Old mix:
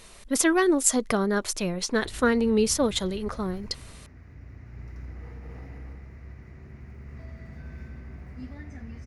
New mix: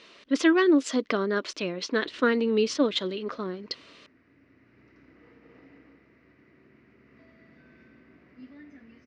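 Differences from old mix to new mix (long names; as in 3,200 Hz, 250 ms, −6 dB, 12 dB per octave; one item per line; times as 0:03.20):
background −5.5 dB
master: add loudspeaker in its box 280–4,800 Hz, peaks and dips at 290 Hz +8 dB, 800 Hz −9 dB, 2,900 Hz +4 dB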